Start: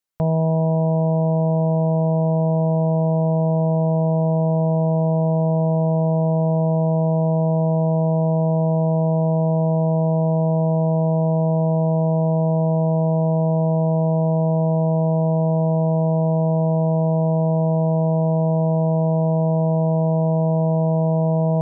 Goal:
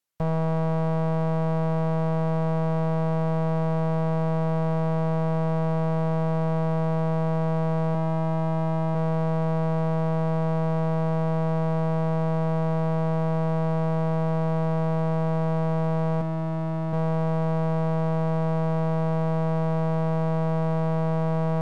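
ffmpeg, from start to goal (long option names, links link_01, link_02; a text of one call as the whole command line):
ffmpeg -i in.wav -filter_complex "[0:a]asettb=1/sr,asplit=3[link_01][link_02][link_03];[link_01]atrim=end=7.944[link_04];[link_02]atrim=start=7.94:end=8.95,asetpts=PTS-STARTPTS,afade=type=in:duration=0.004:curve=qsin,afade=type=out:start_time=1.006:duration=0.004:curve=qsin,aecho=1:1:5:0.58,atrim=end_sample=44541[link_05];[link_03]atrim=start=8.946[link_06];[link_04][link_05]acrossfade=duration=0.004:curve1=hsin:curve2=qsin[link_07];[link_07][link_06]acrossfade=duration=0.004:curve1=qsin:curve2=hsin,asettb=1/sr,asplit=3[link_08][link_09][link_10];[link_08]atrim=end=16.214[link_11];[link_09]atrim=start=16.21:end=16.93,asetpts=PTS-STARTPTS,afade=type=in:duration=0.004:curve=qsin,afade=type=out:start_time=0.716:duration=0.004:curve=qsin,highpass=frequency=51:width=0.5412,highpass=frequency=51:width=1.3066[link_12];[link_10]atrim=start=16.926[link_13];[link_11][link_12]acrossfade=duration=0.004:curve1=hsin:curve2=qsin[link_14];[link_14][link_13]acrossfade=duration=0.004:curve1=qsin:curve2=hsin,alimiter=limit=-17.5dB:level=0:latency=1,aeval=exprs='clip(val(0),-1,0.0251)':channel_layout=same,volume=1.5dB" -ar 48000 -c:a libvorbis -b:a 96k out.ogg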